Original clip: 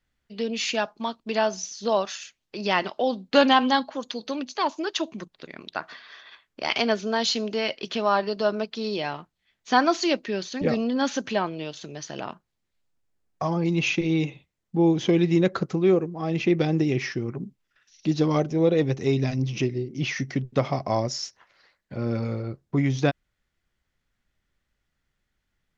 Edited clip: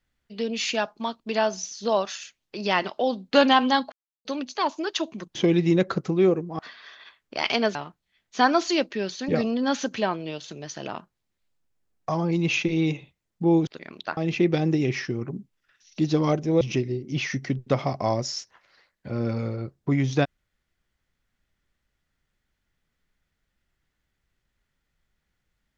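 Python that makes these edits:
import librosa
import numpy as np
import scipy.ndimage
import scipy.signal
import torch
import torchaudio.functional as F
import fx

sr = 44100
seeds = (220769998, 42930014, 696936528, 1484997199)

y = fx.edit(x, sr, fx.silence(start_s=3.92, length_s=0.33),
    fx.swap(start_s=5.35, length_s=0.5, other_s=15.0, other_length_s=1.24),
    fx.cut(start_s=7.01, length_s=2.07),
    fx.cut(start_s=18.68, length_s=0.79), tone=tone)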